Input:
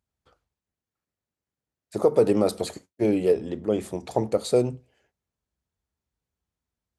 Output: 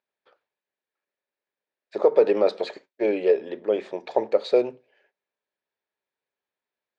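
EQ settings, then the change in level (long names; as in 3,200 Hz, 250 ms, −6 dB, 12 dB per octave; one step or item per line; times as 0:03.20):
loudspeaker in its box 360–4,800 Hz, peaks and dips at 400 Hz +6 dB, 570 Hz +8 dB, 920 Hz +5 dB, 1,700 Hz +9 dB, 2,400 Hz +7 dB, 3,700 Hz +4 dB
−2.5 dB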